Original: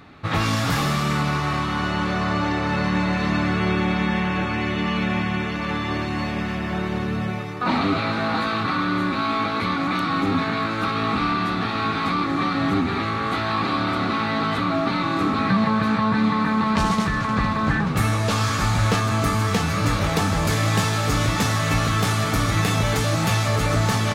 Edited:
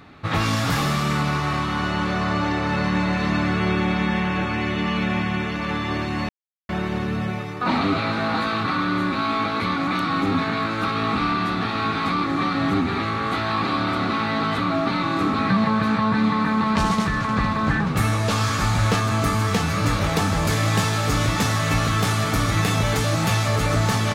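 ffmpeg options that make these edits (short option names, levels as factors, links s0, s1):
-filter_complex "[0:a]asplit=3[s0][s1][s2];[s0]atrim=end=6.29,asetpts=PTS-STARTPTS,afade=t=out:st=6.286:d=0.004:c=hsin[s3];[s1]atrim=start=6.29:end=6.69,asetpts=PTS-STARTPTS,volume=0[s4];[s2]atrim=start=6.69,asetpts=PTS-STARTPTS,afade=t=in:d=0.004:c=hsin[s5];[s3][s4][s5]concat=n=3:v=0:a=1"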